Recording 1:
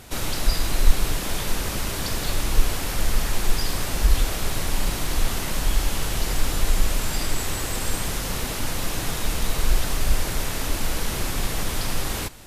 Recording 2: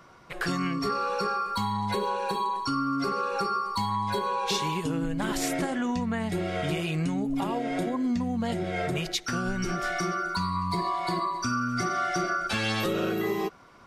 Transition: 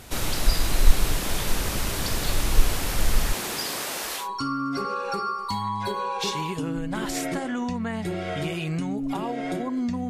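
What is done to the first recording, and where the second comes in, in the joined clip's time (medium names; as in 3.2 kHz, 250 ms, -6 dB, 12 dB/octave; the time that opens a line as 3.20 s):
recording 1
3.32–4.29 s: high-pass 160 Hz -> 650 Hz
4.22 s: go over to recording 2 from 2.49 s, crossfade 0.14 s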